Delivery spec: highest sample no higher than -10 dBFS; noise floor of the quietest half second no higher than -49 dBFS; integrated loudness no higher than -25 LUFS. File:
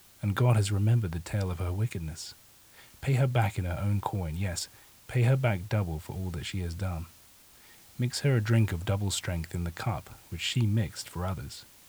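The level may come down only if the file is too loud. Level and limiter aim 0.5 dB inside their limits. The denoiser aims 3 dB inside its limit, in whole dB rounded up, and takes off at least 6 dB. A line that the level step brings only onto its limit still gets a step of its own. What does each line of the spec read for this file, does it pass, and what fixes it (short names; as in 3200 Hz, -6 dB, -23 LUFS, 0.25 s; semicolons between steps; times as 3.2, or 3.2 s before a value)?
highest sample -12.0 dBFS: OK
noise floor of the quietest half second -56 dBFS: OK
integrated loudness -30.0 LUFS: OK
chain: none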